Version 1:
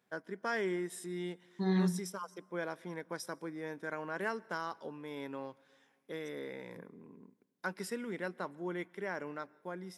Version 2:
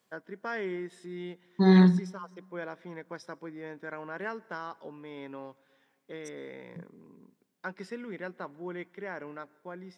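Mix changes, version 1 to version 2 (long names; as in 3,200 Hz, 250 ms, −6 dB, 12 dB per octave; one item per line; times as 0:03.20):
first voice: add low-pass filter 4,200 Hz 12 dB per octave
second voice +11.5 dB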